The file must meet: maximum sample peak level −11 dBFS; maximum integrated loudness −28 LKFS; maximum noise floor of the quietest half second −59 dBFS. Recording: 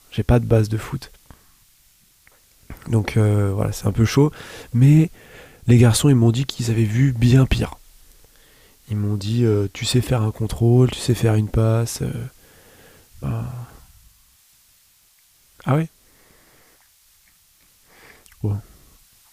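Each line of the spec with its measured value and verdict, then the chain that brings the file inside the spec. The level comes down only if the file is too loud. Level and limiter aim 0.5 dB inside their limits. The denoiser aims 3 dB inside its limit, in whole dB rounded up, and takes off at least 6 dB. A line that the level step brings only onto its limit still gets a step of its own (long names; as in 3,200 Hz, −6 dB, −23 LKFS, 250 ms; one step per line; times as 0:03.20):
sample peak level −4.0 dBFS: out of spec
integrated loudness −19.0 LKFS: out of spec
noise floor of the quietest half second −57 dBFS: out of spec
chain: level −9.5 dB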